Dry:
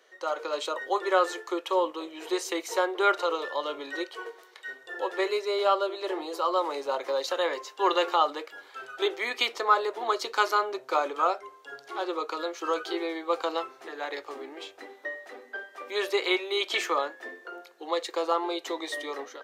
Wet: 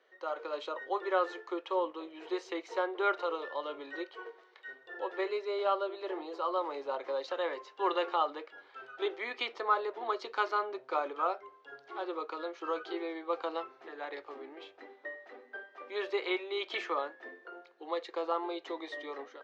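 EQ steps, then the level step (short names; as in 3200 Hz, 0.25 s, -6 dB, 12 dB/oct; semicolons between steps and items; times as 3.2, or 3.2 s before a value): air absorption 190 m; high shelf 11000 Hz -7.5 dB; -5.5 dB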